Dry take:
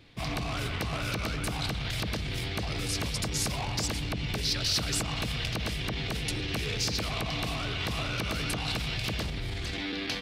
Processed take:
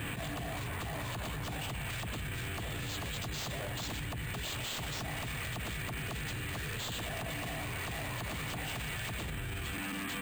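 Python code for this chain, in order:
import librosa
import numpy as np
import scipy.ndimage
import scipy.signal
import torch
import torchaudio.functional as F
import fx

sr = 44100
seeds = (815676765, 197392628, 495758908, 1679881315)

y = fx.highpass(x, sr, hz=83.0, slope=6)
y = fx.notch(y, sr, hz=2100.0, q=9.0)
y = fx.formant_shift(y, sr, semitones=-6)
y = 10.0 ** (-29.5 / 20.0) * (np.abs((y / 10.0 ** (-29.5 / 20.0) + 3.0) % 4.0 - 2.0) - 1.0)
y = np.repeat(scipy.signal.resample_poly(y, 1, 4), 4)[:len(y)]
y = fx.env_flatten(y, sr, amount_pct=100)
y = y * librosa.db_to_amplitude(-4.5)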